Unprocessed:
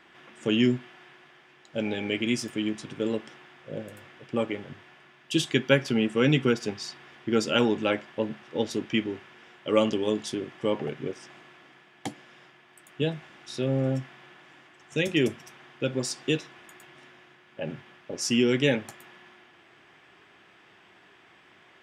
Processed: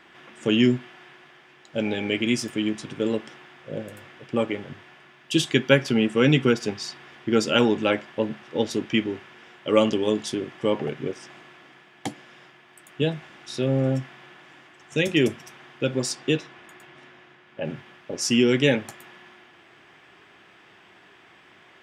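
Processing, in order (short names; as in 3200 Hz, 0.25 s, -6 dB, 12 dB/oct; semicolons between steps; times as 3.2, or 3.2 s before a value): 16.15–17.65 high shelf 6000 Hz -8.5 dB; gain +3.5 dB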